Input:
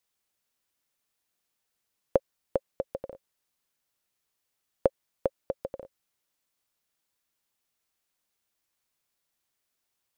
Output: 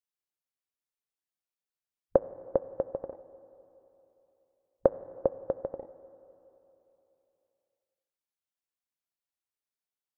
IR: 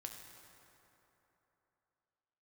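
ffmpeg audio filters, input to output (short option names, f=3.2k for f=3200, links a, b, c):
-filter_complex "[0:a]afwtdn=0.00631,asplit=2[a][b];[b]highshelf=f=3.1k:g=-11[c];[1:a]atrim=start_sample=2205,lowshelf=f=210:g=-8.5[d];[c][d]afir=irnorm=-1:irlink=0,volume=-2dB[e];[a][e]amix=inputs=2:normalize=0,volume=-1dB"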